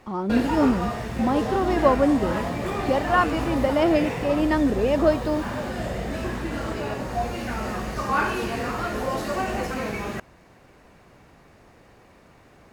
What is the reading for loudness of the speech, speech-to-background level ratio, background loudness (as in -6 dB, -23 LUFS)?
-23.0 LUFS, 5.5 dB, -28.5 LUFS